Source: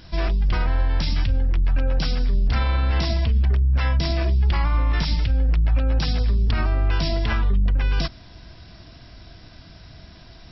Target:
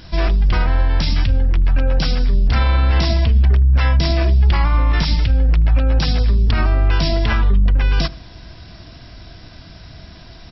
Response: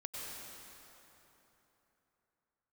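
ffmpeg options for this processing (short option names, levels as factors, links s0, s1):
-filter_complex "[0:a]asplit=2[s0][s1];[s1]adelay=78,lowpass=f=1500:p=1,volume=0.0944,asplit=2[s2][s3];[s3]adelay=78,lowpass=f=1500:p=1,volume=0.48,asplit=2[s4][s5];[s5]adelay=78,lowpass=f=1500:p=1,volume=0.48,asplit=2[s6][s7];[s7]adelay=78,lowpass=f=1500:p=1,volume=0.48[s8];[s0][s2][s4][s6][s8]amix=inputs=5:normalize=0,volume=1.88"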